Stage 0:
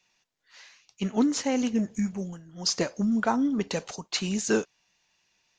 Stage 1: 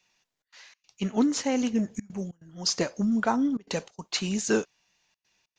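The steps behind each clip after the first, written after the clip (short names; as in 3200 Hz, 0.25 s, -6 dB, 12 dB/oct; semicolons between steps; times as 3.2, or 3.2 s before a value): step gate "xxxx.xx.xxxxxxx" 143 bpm -24 dB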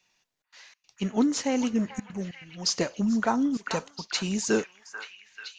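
delay with a stepping band-pass 0.439 s, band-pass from 1300 Hz, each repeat 0.7 oct, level -4.5 dB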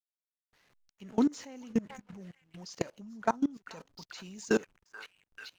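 backlash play -44 dBFS; level quantiser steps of 23 dB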